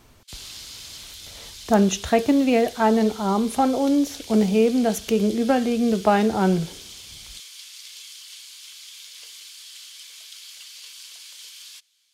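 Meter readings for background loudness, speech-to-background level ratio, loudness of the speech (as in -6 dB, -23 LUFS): -39.0 LUFS, 18.0 dB, -21.0 LUFS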